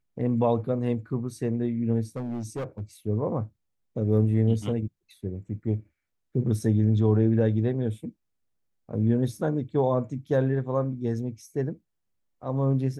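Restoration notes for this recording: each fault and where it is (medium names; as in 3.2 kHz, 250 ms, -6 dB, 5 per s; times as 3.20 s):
2.16–2.81 s: clipped -28 dBFS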